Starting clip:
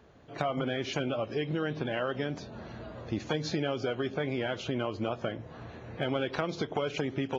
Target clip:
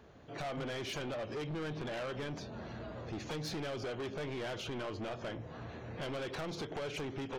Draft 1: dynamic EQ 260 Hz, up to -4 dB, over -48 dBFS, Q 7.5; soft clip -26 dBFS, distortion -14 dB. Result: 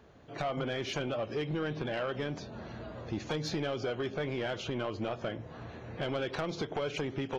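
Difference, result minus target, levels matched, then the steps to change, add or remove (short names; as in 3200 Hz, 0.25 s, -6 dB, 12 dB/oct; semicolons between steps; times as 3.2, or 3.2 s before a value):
soft clip: distortion -8 dB
change: soft clip -36 dBFS, distortion -6 dB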